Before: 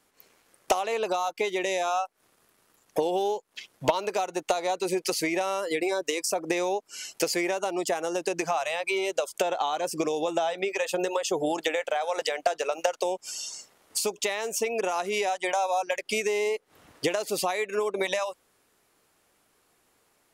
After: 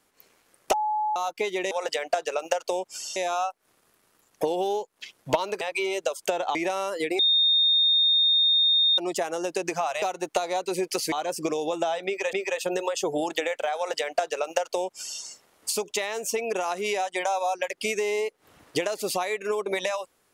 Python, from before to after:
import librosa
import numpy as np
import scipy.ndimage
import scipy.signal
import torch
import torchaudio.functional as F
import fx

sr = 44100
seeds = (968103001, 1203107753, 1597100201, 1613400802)

y = fx.edit(x, sr, fx.bleep(start_s=0.73, length_s=0.43, hz=852.0, db=-23.0),
    fx.swap(start_s=4.16, length_s=1.1, other_s=8.73, other_length_s=0.94),
    fx.bleep(start_s=5.9, length_s=1.79, hz=3670.0, db=-17.5),
    fx.repeat(start_s=10.61, length_s=0.27, count=2),
    fx.duplicate(start_s=12.04, length_s=1.45, to_s=1.71), tone=tone)